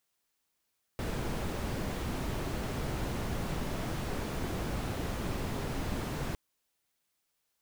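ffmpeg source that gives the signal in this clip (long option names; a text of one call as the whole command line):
ffmpeg -f lavfi -i "anoisesrc=color=brown:amplitude=0.0933:duration=5.36:sample_rate=44100:seed=1" out.wav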